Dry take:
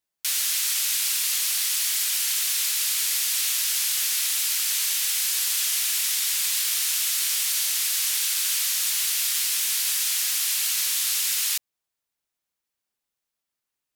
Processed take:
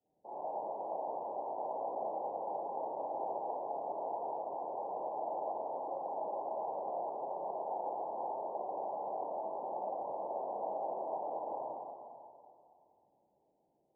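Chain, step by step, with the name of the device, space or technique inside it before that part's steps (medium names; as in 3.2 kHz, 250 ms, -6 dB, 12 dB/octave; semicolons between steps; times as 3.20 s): steep low-pass 820 Hz 96 dB/octave; whispering ghost (whisper effect; high-pass 280 Hz 6 dB/octave; reverberation RT60 2.4 s, pre-delay 23 ms, DRR -9.5 dB); trim +14 dB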